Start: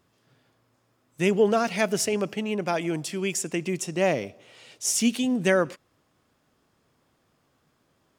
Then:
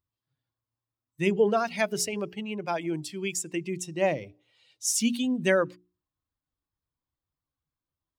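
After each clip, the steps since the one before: expander on every frequency bin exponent 1.5; hum notches 60/120/180/240/300/360/420 Hz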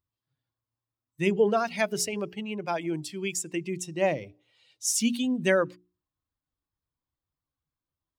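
no audible change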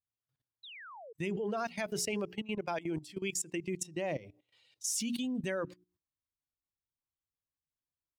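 level held to a coarse grid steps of 17 dB; painted sound fall, 0.63–1.13 s, 420–4100 Hz -49 dBFS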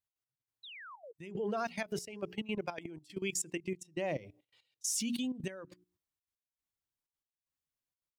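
trance gate "x.x...xxxxx" 189 bpm -12 dB

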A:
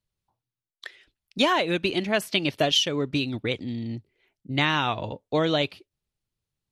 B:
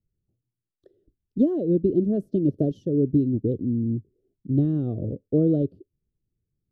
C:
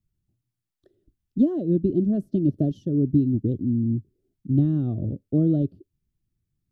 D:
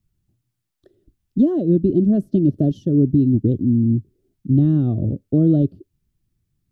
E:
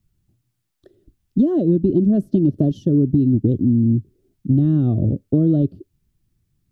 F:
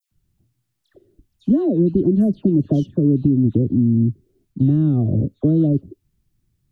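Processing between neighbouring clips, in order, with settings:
inverse Chebyshev low-pass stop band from 860 Hz, stop band 40 dB; trim +7 dB
peaking EQ 470 Hz -12.5 dB 0.56 oct; trim +2.5 dB
loudness maximiser +13 dB; trim -6.5 dB
compression 4:1, threshold -16 dBFS, peak gain reduction 5.5 dB; trim +3.5 dB
phase dispersion lows, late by 114 ms, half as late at 1.8 kHz

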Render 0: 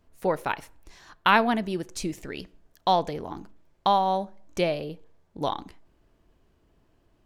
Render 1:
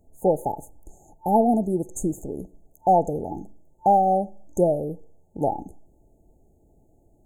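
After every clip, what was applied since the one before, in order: FFT band-reject 890–6300 Hz; trim +5.5 dB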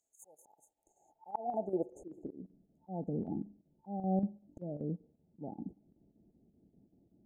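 band-pass sweep 6.3 kHz -> 210 Hz, 0.24–2.51 s; square tremolo 5.2 Hz, depth 60%, duty 80%; slow attack 339 ms; trim +2 dB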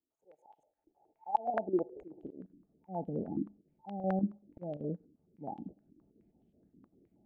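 step-sequenced low-pass 9.5 Hz 310–3100 Hz; trim -2 dB

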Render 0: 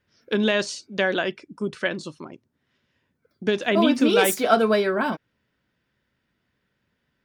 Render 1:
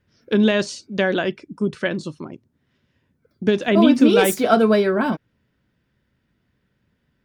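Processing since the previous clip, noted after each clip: bass shelf 350 Hz +9.5 dB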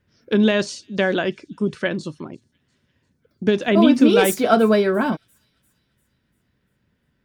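feedback echo behind a high-pass 346 ms, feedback 50%, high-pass 5.2 kHz, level -22 dB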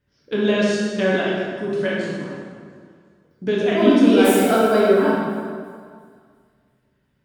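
plate-style reverb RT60 2 s, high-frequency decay 0.65×, DRR -6 dB; trim -6.5 dB

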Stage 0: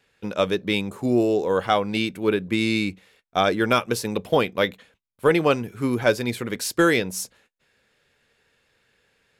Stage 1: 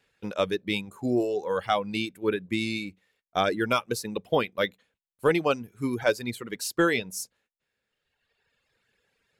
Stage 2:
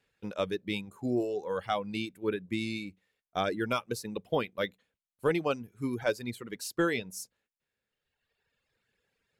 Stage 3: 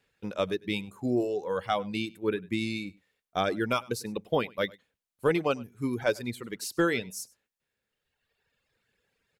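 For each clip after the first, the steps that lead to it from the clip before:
reverb removal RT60 1.6 s; trim -4 dB
bass shelf 370 Hz +3.5 dB; trim -6.5 dB
delay 100 ms -23.5 dB; trim +2.5 dB

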